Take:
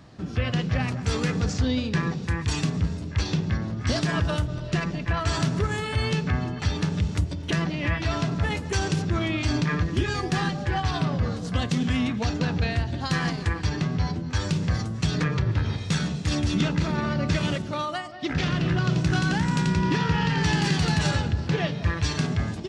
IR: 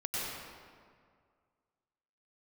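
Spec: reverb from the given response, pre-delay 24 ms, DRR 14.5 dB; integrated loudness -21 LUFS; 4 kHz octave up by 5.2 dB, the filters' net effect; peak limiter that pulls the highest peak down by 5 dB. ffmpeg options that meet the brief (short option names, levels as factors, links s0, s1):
-filter_complex "[0:a]equalizer=f=4000:t=o:g=6.5,alimiter=limit=0.158:level=0:latency=1,asplit=2[s0][s1];[1:a]atrim=start_sample=2205,adelay=24[s2];[s1][s2]afir=irnorm=-1:irlink=0,volume=0.1[s3];[s0][s3]amix=inputs=2:normalize=0,volume=1.88"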